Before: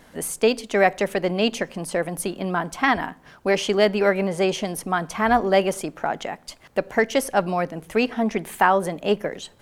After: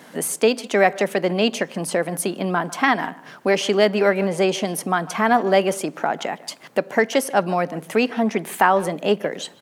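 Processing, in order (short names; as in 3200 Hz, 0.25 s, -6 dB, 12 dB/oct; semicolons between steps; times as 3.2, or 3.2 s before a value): HPF 150 Hz 24 dB/oct; in parallel at +1 dB: compressor, threshold -31 dBFS, peak gain reduction 18 dB; on the sum: speakerphone echo 0.15 s, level -19 dB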